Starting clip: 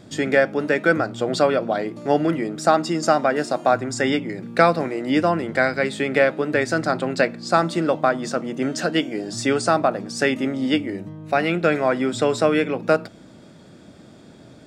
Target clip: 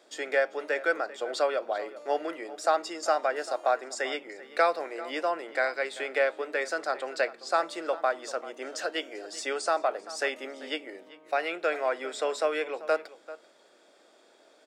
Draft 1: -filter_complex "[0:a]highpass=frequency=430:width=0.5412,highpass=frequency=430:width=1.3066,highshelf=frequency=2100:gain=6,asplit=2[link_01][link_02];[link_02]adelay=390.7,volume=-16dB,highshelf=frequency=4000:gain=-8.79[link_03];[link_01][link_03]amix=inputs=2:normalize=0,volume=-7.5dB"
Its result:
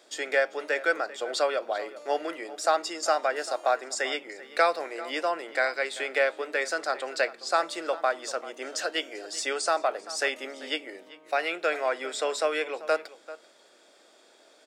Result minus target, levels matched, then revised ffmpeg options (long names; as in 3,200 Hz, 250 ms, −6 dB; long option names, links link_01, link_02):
4,000 Hz band +3.0 dB
-filter_complex "[0:a]highpass=frequency=430:width=0.5412,highpass=frequency=430:width=1.3066,asplit=2[link_01][link_02];[link_02]adelay=390.7,volume=-16dB,highshelf=frequency=4000:gain=-8.79[link_03];[link_01][link_03]amix=inputs=2:normalize=0,volume=-7.5dB"